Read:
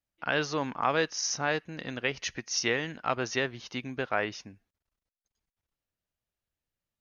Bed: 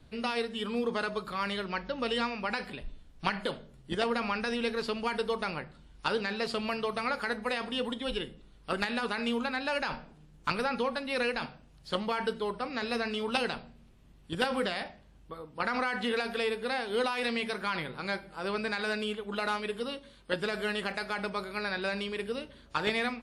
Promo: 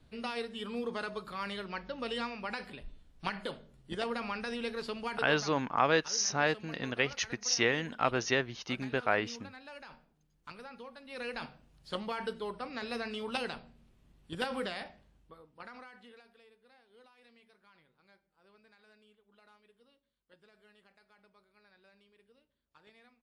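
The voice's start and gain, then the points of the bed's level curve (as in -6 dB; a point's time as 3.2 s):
4.95 s, 0.0 dB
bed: 5.15 s -5.5 dB
5.69 s -17.5 dB
10.97 s -17.5 dB
11.39 s -5.5 dB
15.02 s -5.5 dB
16.45 s -31.5 dB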